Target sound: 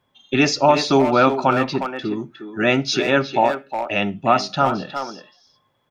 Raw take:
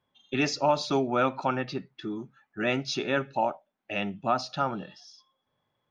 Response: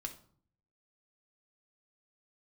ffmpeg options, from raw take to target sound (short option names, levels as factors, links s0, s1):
-filter_complex "[0:a]asplit=2[s0][s1];[s1]adelay=360,highpass=300,lowpass=3400,asoftclip=type=hard:threshold=0.1,volume=0.447[s2];[s0][s2]amix=inputs=2:normalize=0,asplit=2[s3][s4];[1:a]atrim=start_sample=2205,afade=t=out:st=0.15:d=0.01,atrim=end_sample=7056[s5];[s4][s5]afir=irnorm=-1:irlink=0,volume=0.316[s6];[s3][s6]amix=inputs=2:normalize=0,volume=2.51"